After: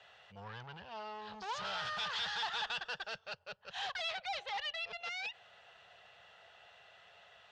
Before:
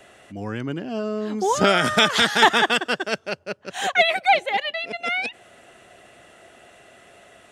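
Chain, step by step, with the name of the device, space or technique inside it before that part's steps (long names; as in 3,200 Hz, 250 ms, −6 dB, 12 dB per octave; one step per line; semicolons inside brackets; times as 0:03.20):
scooped metal amplifier (tube saturation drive 30 dB, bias 0.5; loudspeaker in its box 78–4,400 Hz, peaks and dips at 190 Hz +4 dB, 270 Hz −7 dB, 470 Hz +7 dB, 860 Hz +8 dB, 2,200 Hz −7 dB; guitar amp tone stack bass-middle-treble 10-0-10)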